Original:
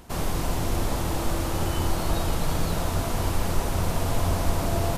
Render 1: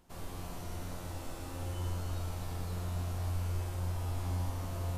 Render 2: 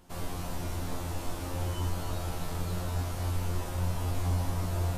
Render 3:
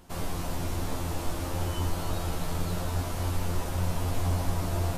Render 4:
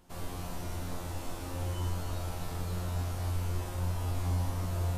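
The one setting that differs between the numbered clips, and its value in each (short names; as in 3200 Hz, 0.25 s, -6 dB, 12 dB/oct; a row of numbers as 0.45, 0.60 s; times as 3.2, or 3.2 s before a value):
resonator, decay: 2.2, 0.38, 0.16, 0.79 s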